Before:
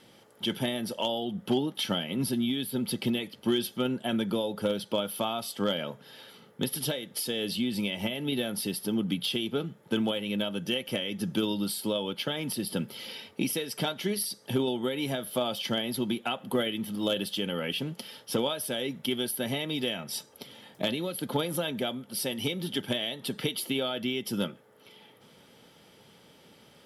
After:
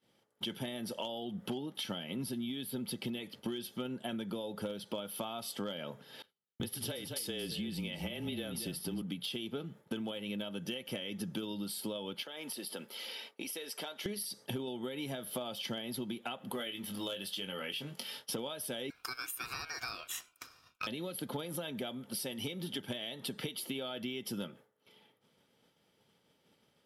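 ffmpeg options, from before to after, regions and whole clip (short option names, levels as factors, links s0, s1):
-filter_complex "[0:a]asettb=1/sr,asplit=3[s0][s1][s2];[s0]atrim=end=6.224[s3];[s1]atrim=start=6.22:end=9.02,asetpts=PTS-STARTPTS,afade=t=in:d=0.004:c=qsin,afade=t=out:st=2.796:d=0.004:c=qsin,agate=range=0.0224:threshold=0.00794:ratio=3:release=100:detection=peak,afreqshift=-25,aecho=1:1:225:0.266,atrim=end_sample=123480[s4];[s2]atrim=start=9.016[s5];[s3][s4]acrossfade=d=0.004:c1=hsin:c2=qsin[s6];[s6][s5]acrossfade=d=0.004:c1=qsin:c2=hsin,asettb=1/sr,asplit=3[s7][s8][s9];[s7]atrim=end=12.234[s10];[s8]atrim=start=12.23:end=14.06,asetpts=PTS-STARTPTS,afade=t=in:d=0.004:c=qsin,afade=t=out:st=1.826:d=0.004:c=qsin,highpass=410,acompressor=threshold=0.00631:ratio=2.5:attack=3.2:release=140:knee=1:detection=peak[s11];[s9]atrim=start=14.056[s12];[s10][s11]acrossfade=d=0.004:c1=hsin:c2=qsin[s13];[s13][s12]acrossfade=d=0.004:c1=qsin:c2=hsin,asettb=1/sr,asplit=3[s14][s15][s16];[s14]atrim=end=16.524[s17];[s15]atrim=start=16.52:end=18.28,asetpts=PTS-STARTPTS,afade=t=in:d=0.004:c=qsin,afade=t=out:st=1.756:d=0.004:c=qsin,highpass=51,equalizer=f=200:w=0.31:g=-7.5,asplit=2[s18][s19];[s19]adelay=21,volume=0.447[s20];[s18][s20]amix=inputs=2:normalize=0,atrim=end_sample=77616[s21];[s16]atrim=start=18.276[s22];[s17][s21]acrossfade=d=0.004:c1=hsin:c2=qsin[s23];[s23][s22]acrossfade=d=0.004:c1=qsin:c2=hsin,asettb=1/sr,asplit=3[s24][s25][s26];[s24]atrim=end=18.904[s27];[s25]atrim=start=18.9:end=20.87,asetpts=PTS-STARTPTS,afade=t=in:d=0.004:c=qsin,afade=t=out:st=1.966:d=0.004:c=qsin,highpass=f=410:w=0.5412,highpass=f=410:w=1.3066,aeval=exprs='val(0)*sin(2*PI*1900*n/s)':c=same[s28];[s26]atrim=start=20.866[s29];[s27][s28]acrossfade=d=0.004:c1=hsin:c2=qsin[s30];[s30][s29]acrossfade=d=0.004:c1=qsin:c2=hsin,agate=range=0.0224:threshold=0.00708:ratio=3:detection=peak,acompressor=threshold=0.00708:ratio=5,volume=1.78"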